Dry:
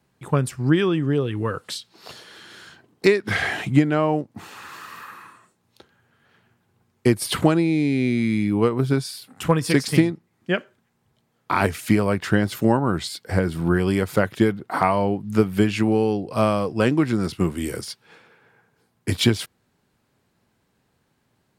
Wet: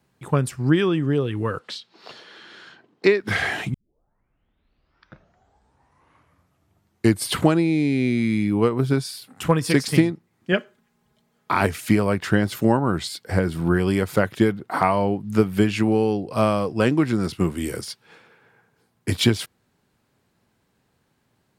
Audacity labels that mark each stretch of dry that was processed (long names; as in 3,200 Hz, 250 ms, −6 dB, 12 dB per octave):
1.590000	3.210000	three-way crossover with the lows and the highs turned down lows −13 dB, under 170 Hz, highs −19 dB, over 5,500 Hz
3.740000	3.740000	tape start 3.59 s
10.520000	11.530000	comb filter 4.8 ms